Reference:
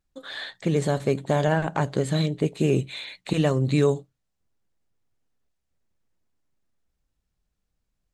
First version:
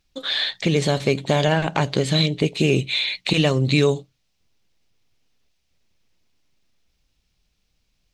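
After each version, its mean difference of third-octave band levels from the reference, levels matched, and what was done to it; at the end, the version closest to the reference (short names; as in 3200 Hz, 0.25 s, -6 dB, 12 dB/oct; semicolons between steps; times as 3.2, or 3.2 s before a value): 2.5 dB: band shelf 3600 Hz +9.5 dB; in parallel at +2.5 dB: compressor, threshold -29 dBFS, peak gain reduction 13.5 dB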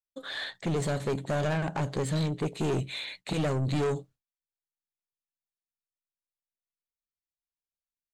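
4.0 dB: expander -43 dBFS; soft clip -24.5 dBFS, distortion -7 dB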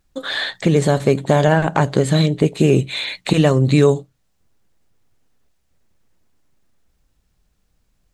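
1.0 dB: in parallel at +3 dB: compressor, threshold -32 dBFS, peak gain reduction 15.5 dB; on the sum: gain +5.5 dB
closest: third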